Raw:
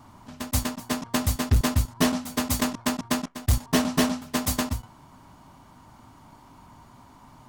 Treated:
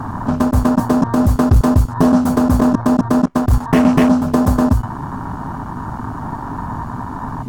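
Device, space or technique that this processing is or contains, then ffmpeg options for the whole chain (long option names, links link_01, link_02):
mastering chain: -filter_complex "[0:a]equalizer=frequency=3500:width_type=o:width=0.78:gain=-2.5,acrossover=split=760|3000[link_01][link_02][link_03];[link_01]acompressor=threshold=-29dB:ratio=4[link_04];[link_02]acompressor=threshold=-43dB:ratio=4[link_05];[link_03]acompressor=threshold=-37dB:ratio=4[link_06];[link_04][link_05][link_06]amix=inputs=3:normalize=0,acompressor=threshold=-35dB:ratio=2,alimiter=level_in=26.5dB:limit=-1dB:release=50:level=0:latency=1,afwtdn=0.0891"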